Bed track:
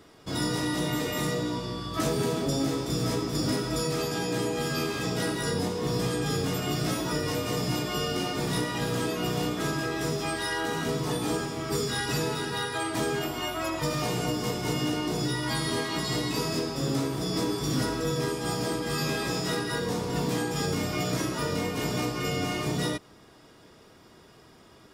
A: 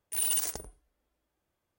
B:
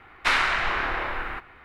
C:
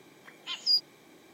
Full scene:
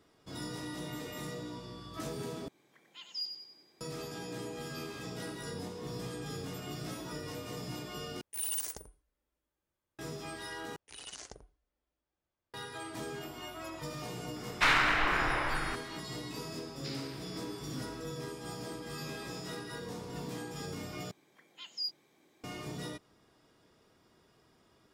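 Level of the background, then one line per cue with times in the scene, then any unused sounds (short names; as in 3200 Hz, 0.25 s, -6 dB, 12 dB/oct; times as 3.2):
bed track -12.5 dB
2.48 replace with C -13.5 dB + feedback echo 93 ms, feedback 49%, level -7 dB
8.21 replace with A -6.5 dB + notch 710 Hz, Q 8.4
10.76 replace with A -8 dB + LPF 6600 Hz 24 dB/oct
14.36 add B -3.5 dB + hard clip -14 dBFS
16.59 add B -2.5 dB + band-pass 5000 Hz, Q 11
21.11 replace with C -11.5 dB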